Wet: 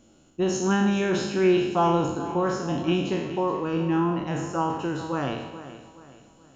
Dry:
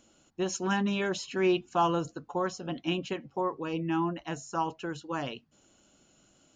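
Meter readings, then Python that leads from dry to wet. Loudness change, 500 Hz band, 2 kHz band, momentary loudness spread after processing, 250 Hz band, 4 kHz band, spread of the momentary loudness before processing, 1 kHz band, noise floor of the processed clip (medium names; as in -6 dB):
+6.5 dB, +7.0 dB, +3.5 dB, 9 LU, +7.5 dB, +3.0 dB, 9 LU, +4.5 dB, -57 dBFS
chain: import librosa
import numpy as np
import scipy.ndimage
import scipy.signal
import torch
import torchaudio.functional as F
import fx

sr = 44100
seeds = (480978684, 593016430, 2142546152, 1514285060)

y = fx.spec_trails(x, sr, decay_s=0.96)
y = fx.tilt_shelf(y, sr, db=4.5, hz=660.0)
y = fx.echo_feedback(y, sr, ms=424, feedback_pct=39, wet_db=-14.0)
y = y * 10.0 ** (3.0 / 20.0)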